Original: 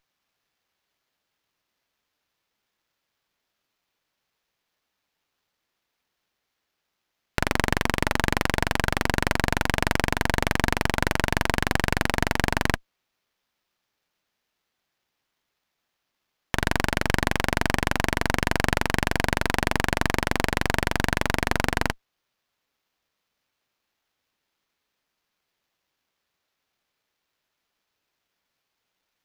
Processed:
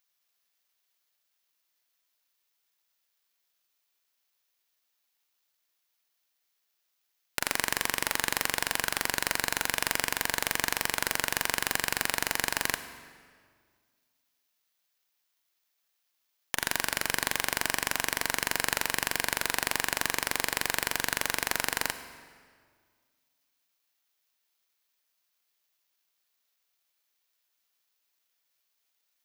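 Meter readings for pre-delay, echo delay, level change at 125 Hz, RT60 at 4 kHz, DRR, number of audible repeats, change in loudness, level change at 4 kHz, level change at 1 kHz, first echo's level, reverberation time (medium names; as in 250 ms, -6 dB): 30 ms, no echo, -18.0 dB, 1.4 s, 10.5 dB, no echo, -4.0 dB, -1.0 dB, -7.0 dB, no echo, 1.9 s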